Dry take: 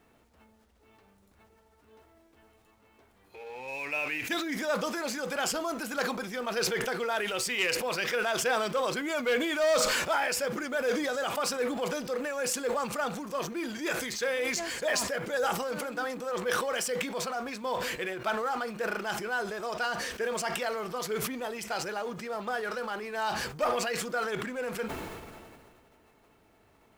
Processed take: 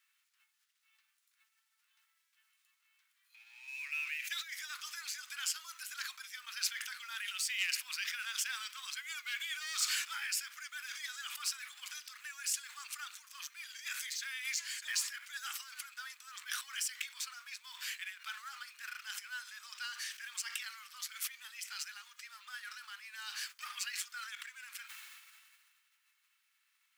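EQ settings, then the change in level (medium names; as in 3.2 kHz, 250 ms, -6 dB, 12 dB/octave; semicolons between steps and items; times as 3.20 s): Bessel high-pass 2.4 kHz, order 8; -2.5 dB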